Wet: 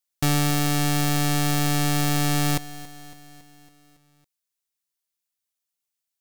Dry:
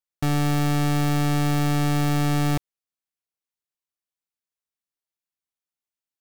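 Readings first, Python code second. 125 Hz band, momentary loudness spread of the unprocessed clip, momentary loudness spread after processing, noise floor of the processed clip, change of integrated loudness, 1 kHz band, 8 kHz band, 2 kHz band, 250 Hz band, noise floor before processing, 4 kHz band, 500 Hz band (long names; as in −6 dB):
−2.0 dB, 3 LU, 5 LU, −84 dBFS, +0.5 dB, +0.5 dB, +8.0 dB, +2.5 dB, −1.5 dB, below −85 dBFS, +5.5 dB, −1.0 dB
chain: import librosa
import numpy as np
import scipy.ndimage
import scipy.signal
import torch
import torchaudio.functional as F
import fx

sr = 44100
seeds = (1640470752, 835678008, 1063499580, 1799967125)

p1 = fx.high_shelf(x, sr, hz=2800.0, db=10.5)
p2 = fx.rider(p1, sr, range_db=10, speed_s=0.5)
p3 = p2 + fx.echo_feedback(p2, sr, ms=278, feedback_pct=59, wet_db=-17, dry=0)
y = F.gain(torch.from_numpy(p3), -1.0).numpy()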